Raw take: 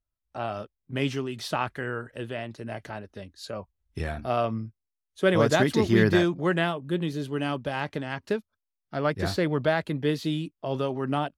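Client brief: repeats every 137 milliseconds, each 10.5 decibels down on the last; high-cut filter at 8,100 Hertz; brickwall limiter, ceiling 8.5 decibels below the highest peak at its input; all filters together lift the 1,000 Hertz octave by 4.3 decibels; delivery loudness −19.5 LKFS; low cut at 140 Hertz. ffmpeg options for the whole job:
ffmpeg -i in.wav -af "highpass=140,lowpass=8100,equalizer=frequency=1000:width_type=o:gain=6,alimiter=limit=-14dB:level=0:latency=1,aecho=1:1:137|274|411:0.299|0.0896|0.0269,volume=9dB" out.wav

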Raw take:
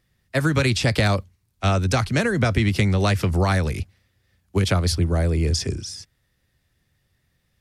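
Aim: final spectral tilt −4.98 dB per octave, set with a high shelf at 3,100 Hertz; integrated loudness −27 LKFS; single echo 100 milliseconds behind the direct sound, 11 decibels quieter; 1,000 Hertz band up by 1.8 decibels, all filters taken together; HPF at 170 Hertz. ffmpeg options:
ffmpeg -i in.wav -af "highpass=170,equalizer=frequency=1000:width_type=o:gain=3,highshelf=frequency=3100:gain=-3,aecho=1:1:100:0.282,volume=-3dB" out.wav

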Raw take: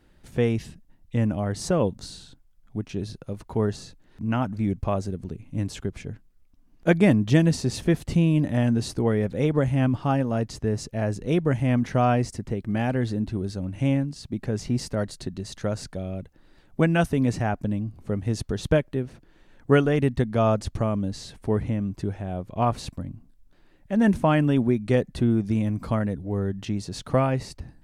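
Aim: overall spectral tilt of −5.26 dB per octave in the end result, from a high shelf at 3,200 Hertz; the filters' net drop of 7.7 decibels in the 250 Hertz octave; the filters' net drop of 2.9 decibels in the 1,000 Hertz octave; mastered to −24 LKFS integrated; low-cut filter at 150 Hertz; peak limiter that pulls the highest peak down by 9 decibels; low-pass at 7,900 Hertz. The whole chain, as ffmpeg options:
ffmpeg -i in.wav -af "highpass=150,lowpass=7900,equalizer=frequency=250:width_type=o:gain=-9,equalizer=frequency=1000:width_type=o:gain=-4,highshelf=frequency=3200:gain=5,volume=8dB,alimiter=limit=-10.5dB:level=0:latency=1" out.wav

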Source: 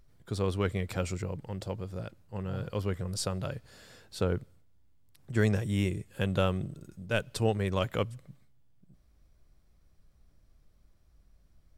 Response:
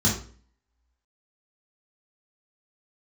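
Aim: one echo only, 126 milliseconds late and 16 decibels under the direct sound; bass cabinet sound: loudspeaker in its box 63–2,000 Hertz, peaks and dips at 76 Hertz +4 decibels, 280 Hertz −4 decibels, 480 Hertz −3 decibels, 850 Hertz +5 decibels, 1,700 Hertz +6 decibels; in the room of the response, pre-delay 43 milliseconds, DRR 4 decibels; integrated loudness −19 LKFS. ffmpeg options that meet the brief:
-filter_complex "[0:a]aecho=1:1:126:0.158,asplit=2[link_01][link_02];[1:a]atrim=start_sample=2205,adelay=43[link_03];[link_02][link_03]afir=irnorm=-1:irlink=0,volume=-16.5dB[link_04];[link_01][link_04]amix=inputs=2:normalize=0,highpass=frequency=63:width=0.5412,highpass=frequency=63:width=1.3066,equalizer=frequency=76:width_type=q:width=4:gain=4,equalizer=frequency=280:width_type=q:width=4:gain=-4,equalizer=frequency=480:width_type=q:width=4:gain=-3,equalizer=frequency=850:width_type=q:width=4:gain=5,equalizer=frequency=1700:width_type=q:width=4:gain=6,lowpass=frequency=2000:width=0.5412,lowpass=frequency=2000:width=1.3066,volume=2dB"

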